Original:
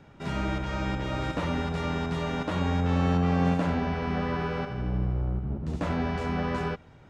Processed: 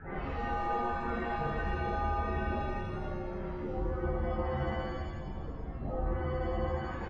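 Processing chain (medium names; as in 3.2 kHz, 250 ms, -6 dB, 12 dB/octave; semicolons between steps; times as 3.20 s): one-bit delta coder 64 kbps, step -29.5 dBFS; tilt EQ +2.5 dB/octave; on a send: feedback delay 155 ms, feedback 43%, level -12 dB; on the sum: AM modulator 230 Hz, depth 70%; pitch shift -5 st; loudest bins only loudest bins 16; in parallel at -7 dB: bit crusher 4-bit; on the sum: compression, threshold -40 dBFS, peak gain reduction 12.5 dB; mistuned SSB -230 Hz 170–2400 Hz; pitch-shifted reverb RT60 1.4 s, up +7 st, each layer -8 dB, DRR -10.5 dB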